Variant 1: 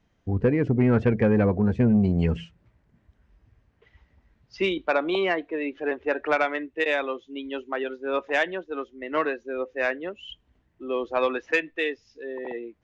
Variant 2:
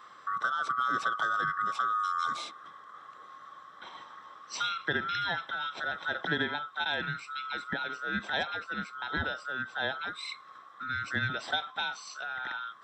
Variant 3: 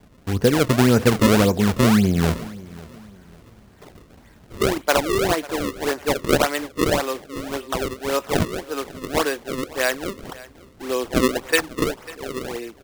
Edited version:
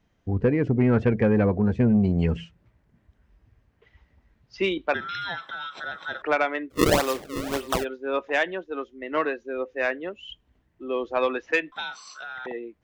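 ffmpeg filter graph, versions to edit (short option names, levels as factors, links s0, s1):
-filter_complex "[1:a]asplit=2[s0][s1];[0:a]asplit=4[s2][s3][s4][s5];[s2]atrim=end=4.942[s6];[s0]atrim=start=4.938:end=6.222[s7];[s3]atrim=start=6.218:end=6.76[s8];[2:a]atrim=start=6.7:end=7.85[s9];[s4]atrim=start=7.79:end=11.722[s10];[s1]atrim=start=11.718:end=12.462[s11];[s5]atrim=start=12.458[s12];[s6][s7]acrossfade=d=0.004:c1=hsin:c2=hsin[s13];[s13][s8]acrossfade=d=0.004:c1=hsin:c2=hsin[s14];[s14][s9]acrossfade=d=0.06:c1=tri:c2=tri[s15];[s15][s10]acrossfade=d=0.06:c1=tri:c2=tri[s16];[s16][s11]acrossfade=d=0.004:c1=hsin:c2=hsin[s17];[s17][s12]acrossfade=d=0.004:c1=hsin:c2=hsin"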